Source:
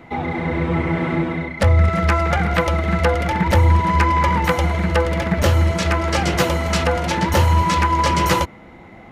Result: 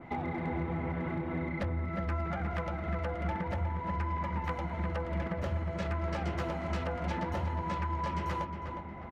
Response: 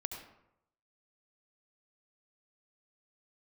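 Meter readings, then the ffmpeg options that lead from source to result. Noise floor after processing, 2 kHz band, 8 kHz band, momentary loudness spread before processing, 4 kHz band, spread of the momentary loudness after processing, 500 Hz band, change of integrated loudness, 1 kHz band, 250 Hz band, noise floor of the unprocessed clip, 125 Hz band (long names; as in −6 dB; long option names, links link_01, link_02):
−41 dBFS, −18.5 dB, −29.0 dB, 5 LU, −23.5 dB, 2 LU, −16.5 dB, −16.5 dB, −16.5 dB, −14.5 dB, −42 dBFS, −16.5 dB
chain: -filter_complex "[0:a]aemphasis=mode=reproduction:type=75kf,bandreject=frequency=470:width=12,acompressor=threshold=-26dB:ratio=20,volume=22dB,asoftclip=hard,volume=-22dB,asplit=2[link_01][link_02];[link_02]adelay=360,lowpass=frequency=2200:poles=1,volume=-5.5dB,asplit=2[link_03][link_04];[link_04]adelay=360,lowpass=frequency=2200:poles=1,volume=0.51,asplit=2[link_05][link_06];[link_06]adelay=360,lowpass=frequency=2200:poles=1,volume=0.51,asplit=2[link_07][link_08];[link_08]adelay=360,lowpass=frequency=2200:poles=1,volume=0.51,asplit=2[link_09][link_10];[link_10]adelay=360,lowpass=frequency=2200:poles=1,volume=0.51,asplit=2[link_11][link_12];[link_12]adelay=360,lowpass=frequency=2200:poles=1,volume=0.51[link_13];[link_01][link_03][link_05][link_07][link_09][link_11][link_13]amix=inputs=7:normalize=0,adynamicequalizer=threshold=0.00355:dfrequency=2700:dqfactor=0.7:tfrequency=2700:tqfactor=0.7:attack=5:release=100:ratio=0.375:range=1.5:mode=cutabove:tftype=highshelf,volume=-5dB"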